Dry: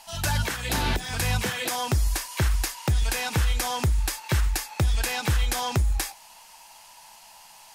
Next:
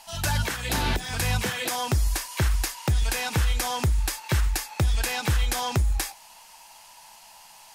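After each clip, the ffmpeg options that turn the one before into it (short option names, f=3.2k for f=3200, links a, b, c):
-af anull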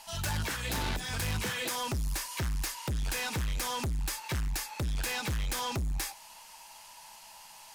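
-filter_complex "[0:a]bandreject=f=730:w=12,asoftclip=type=tanh:threshold=-30dB,asplit=2[a][b];[b]acrusher=bits=4:mix=0:aa=0.5,volume=-9dB[c];[a][c]amix=inputs=2:normalize=0,volume=-1.5dB"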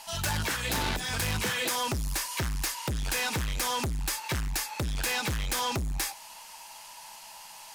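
-af "lowshelf=f=150:g=-5,volume=4.5dB"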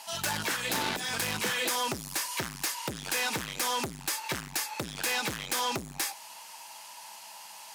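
-af "highpass=190"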